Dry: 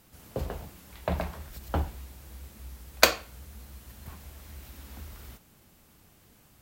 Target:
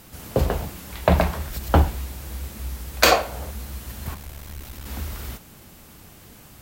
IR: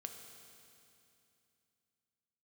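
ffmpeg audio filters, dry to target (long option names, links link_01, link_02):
-filter_complex "[0:a]asettb=1/sr,asplit=3[link_01][link_02][link_03];[link_01]atrim=end=3.114[link_04];[link_02]atrim=start=3.11:end=3.51,asetpts=PTS-STARTPTS,afade=type=in:duration=0.004:curve=qsin,afade=type=out:start_time=0.396:duration=0.004:curve=qsin,equalizer=frequency=670:width=0.99:gain=13.5[link_05];[link_03]atrim=start=3.506[link_06];[link_04][link_05]acrossfade=duration=0.004:curve1=hsin:curve2=qsin[link_07];[link_07][link_06]acrossfade=duration=0.004:curve1=qsin:curve2=hsin,asettb=1/sr,asplit=3[link_08][link_09][link_10];[link_08]atrim=end=4.144[link_11];[link_09]atrim=start=4.14:end=4.86,asetpts=PTS-STARTPTS,afade=type=in:duration=0.004:curve=qsin,afade=type=out:start_time=0.716:duration=0.004:curve=qsin,aeval=exprs='(tanh(158*val(0)+0.7)-tanh(0.7))/158':channel_layout=same[link_12];[link_10]atrim=start=4.856[link_13];[link_11][link_12]acrossfade=duration=0.004:curve1=hsin:curve2=qsin[link_14];[link_14][link_13]acrossfade=duration=0.004:curve1=qsin:curve2=hsin,alimiter=level_in=13.5dB:limit=-1dB:release=50:level=0:latency=1,volume=-1dB"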